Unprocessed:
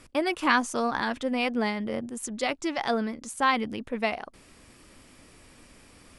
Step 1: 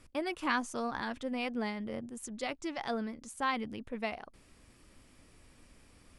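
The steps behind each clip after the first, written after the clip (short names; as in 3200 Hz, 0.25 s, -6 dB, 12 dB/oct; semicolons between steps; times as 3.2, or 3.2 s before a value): low shelf 120 Hz +7.5 dB; gain -9 dB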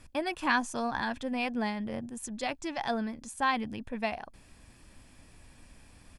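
comb 1.2 ms, depth 35%; gain +3.5 dB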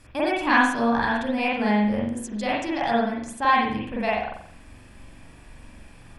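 reverb, pre-delay 43 ms, DRR -6 dB; gain +2 dB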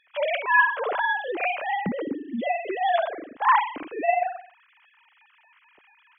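sine-wave speech; gain -1.5 dB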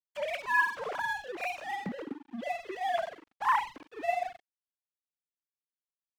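crossover distortion -37 dBFS; gain -7 dB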